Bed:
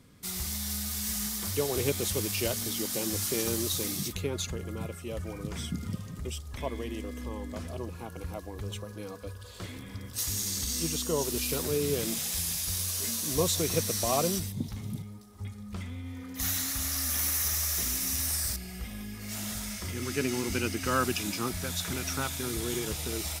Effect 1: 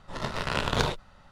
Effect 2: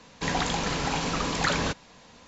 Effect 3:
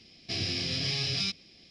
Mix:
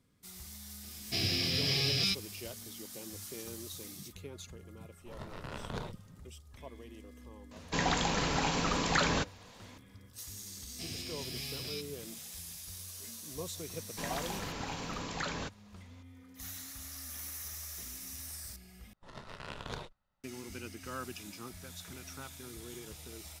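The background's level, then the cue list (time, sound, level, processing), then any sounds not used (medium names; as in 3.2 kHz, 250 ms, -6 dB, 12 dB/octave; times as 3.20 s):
bed -14 dB
0.83 s: add 3
4.97 s: add 1 -16 dB + tilt shelf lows +3.5 dB, about 1.3 kHz
7.51 s: add 2 -3 dB
10.50 s: add 3 -11.5 dB
13.76 s: add 2 -11.5 dB
18.93 s: replace with 1 -16 dB + gate -42 dBFS, range -12 dB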